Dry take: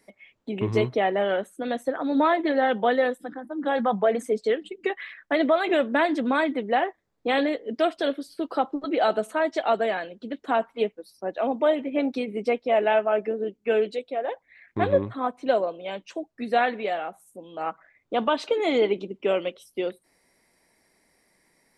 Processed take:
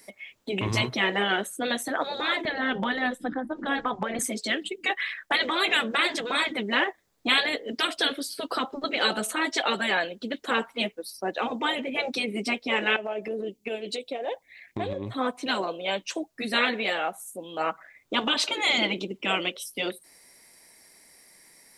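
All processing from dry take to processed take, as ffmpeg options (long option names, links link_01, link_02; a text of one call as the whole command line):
ffmpeg -i in.wav -filter_complex "[0:a]asettb=1/sr,asplit=3[link_01][link_02][link_03];[link_01]atrim=end=2.454[link_04];[link_02]atrim=start=2.45:end=4.19,asetpts=PTS-STARTPTS,afade=type=in:duration=0.004:curve=qsin,afade=type=out:start_time=1.736:duration=0.004:curve=qsin,aemphasis=mode=reproduction:type=bsi,acompressor=threshold=-21dB:ratio=4:attack=3.2:release=140:knee=1:detection=peak[link_05];[link_03]atrim=start=4.186[link_06];[link_04][link_05]acrossfade=duration=0.004:curve1=hsin:curve2=qsin[link_07];[link_07][link_06]acrossfade=duration=0.004:curve1=qsin:curve2=hsin,asettb=1/sr,asplit=3[link_08][link_09][link_10];[link_08]atrim=end=12.964[link_11];[link_09]atrim=start=12.96:end=15.18,asetpts=PTS-STARTPTS,afade=type=in:duration=0.004:curve=qsin,afade=type=out:start_time=2.216:duration=0.004:curve=qsin,equalizer=frequency=1400:width_type=o:width=0.82:gain=-11,acompressor=threshold=-29dB:ratio=12:attack=3.2:release=140:knee=1:detection=peak[link_12];[link_10]atrim=start=15.176[link_13];[link_11][link_12]acrossfade=duration=0.004:curve1=hsin:curve2=qsin[link_14];[link_14][link_13]acrossfade=duration=0.004:curve1=qsin:curve2=hsin,lowshelf=frequency=360:gain=-3,afftfilt=real='re*lt(hypot(re,im),0.282)':imag='im*lt(hypot(re,im),0.282)':win_size=1024:overlap=0.75,highshelf=frequency=3200:gain=12,volume=4.5dB" out.wav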